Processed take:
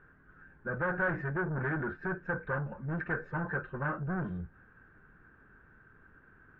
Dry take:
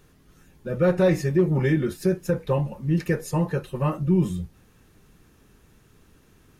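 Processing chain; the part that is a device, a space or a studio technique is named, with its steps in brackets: overdriven synthesiser ladder filter (soft clip -25.5 dBFS, distortion -7 dB; ladder low-pass 1600 Hz, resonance 85%); gain +6.5 dB

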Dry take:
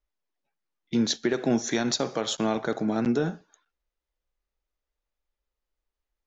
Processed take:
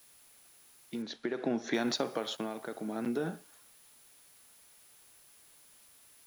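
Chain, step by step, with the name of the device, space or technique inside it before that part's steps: medium wave at night (BPF 190–4100 Hz; compressor, threshold -26 dBFS, peak gain reduction 7 dB; tremolo 0.56 Hz, depth 64%; whine 10000 Hz -62 dBFS; white noise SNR 23 dB); 1.02–1.74 air absorption 100 m

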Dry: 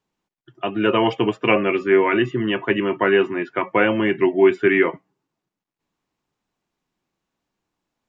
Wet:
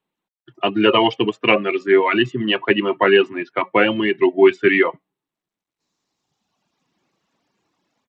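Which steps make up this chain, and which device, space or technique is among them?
notch 1500 Hz, Q 25; reverb removal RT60 1.6 s; dynamic EQ 3000 Hz, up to +6 dB, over -44 dBFS, Q 4.2; Bluetooth headset (HPF 130 Hz 12 dB/oct; AGC gain up to 14.5 dB; downsampling 16000 Hz; gain -1 dB; SBC 64 kbps 32000 Hz)

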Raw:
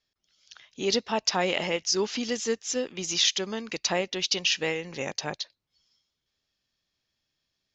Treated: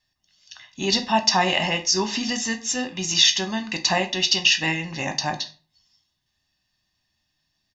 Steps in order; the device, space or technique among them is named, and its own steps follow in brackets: microphone above a desk (comb 1.1 ms, depth 80%; reverb RT60 0.40 s, pre-delay 3 ms, DRR 5 dB); gain +3.5 dB

